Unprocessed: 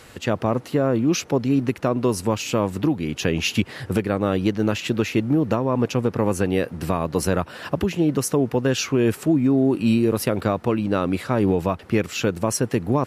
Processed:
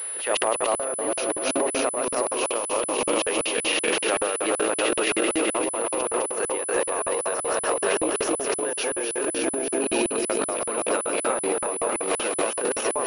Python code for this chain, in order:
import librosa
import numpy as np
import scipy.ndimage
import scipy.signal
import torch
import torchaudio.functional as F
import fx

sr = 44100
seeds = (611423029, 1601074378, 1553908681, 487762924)

y = fx.reverse_delay_fb(x, sr, ms=149, feedback_pct=81, wet_db=-2.5)
y = scipy.signal.sosfilt(scipy.signal.butter(4, 420.0, 'highpass', fs=sr, output='sos'), y)
y = fx.transient(y, sr, attack_db=-6, sustain_db=11)
y = fx.over_compress(y, sr, threshold_db=-24.0, ratio=-0.5)
y = fx.buffer_crackle(y, sr, first_s=0.37, period_s=0.19, block=2048, kind='zero')
y = fx.pwm(y, sr, carrier_hz=10000.0)